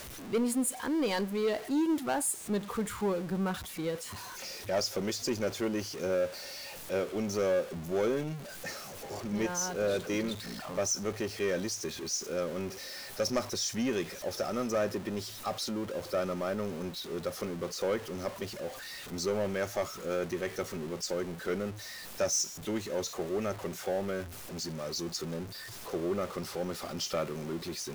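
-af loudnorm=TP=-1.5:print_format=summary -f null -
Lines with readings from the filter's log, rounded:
Input Integrated:    -33.8 LUFS
Input True Peak:     -20.0 dBTP
Input LRA:             4.0 LU
Input Threshold:     -43.8 LUFS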